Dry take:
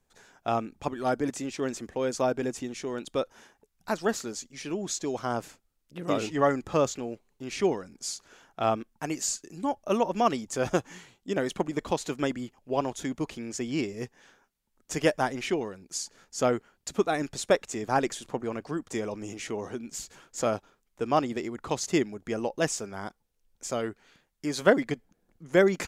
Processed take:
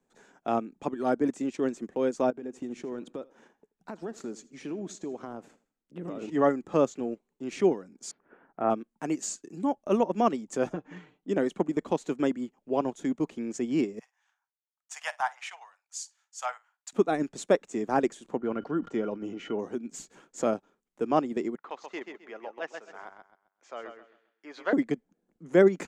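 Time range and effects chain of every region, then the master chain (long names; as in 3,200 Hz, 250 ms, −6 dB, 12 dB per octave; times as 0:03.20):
0:02.30–0:06.29: high-shelf EQ 3,500 Hz −6.5 dB + downward compressor 10 to 1, threshold −34 dBFS + repeating echo 82 ms, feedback 37%, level −17 dB
0:08.11–0:08.70: one scale factor per block 7 bits + inverse Chebyshev low-pass filter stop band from 8,000 Hz, stop band 70 dB
0:10.73–0:11.29: low-pass filter 2,800 Hz + comb filter 6.6 ms, depth 95% + downward compressor 16 to 1, threshold −30 dBFS
0:13.99–0:16.93: Butterworth high-pass 760 Hz 48 dB per octave + flutter between parallel walls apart 9.1 metres, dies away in 0.2 s + multiband upward and downward expander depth 40%
0:18.38–0:19.59: high-frequency loss of the air 170 metres + hollow resonant body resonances 1,400/3,000 Hz, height 18 dB, ringing for 85 ms + level that may fall only so fast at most 120 dB per second
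0:21.55–0:24.73: high-pass filter 920 Hz + high-frequency loss of the air 250 metres + repeating echo 131 ms, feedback 33%, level −6.5 dB
whole clip: three-way crossover with the lows and the highs turned down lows −19 dB, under 230 Hz, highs −21 dB, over 6,100 Hz; transient designer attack −2 dB, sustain −6 dB; drawn EQ curve 110 Hz 0 dB, 170 Hz +5 dB, 580 Hz −6 dB, 5,000 Hz −13 dB, 7,800 Hz 0 dB; level +7 dB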